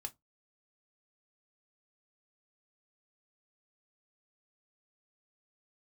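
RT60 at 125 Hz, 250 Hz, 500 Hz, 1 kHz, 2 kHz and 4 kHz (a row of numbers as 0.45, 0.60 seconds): 0.25, 0.20, 0.20, 0.15, 0.15, 0.10 seconds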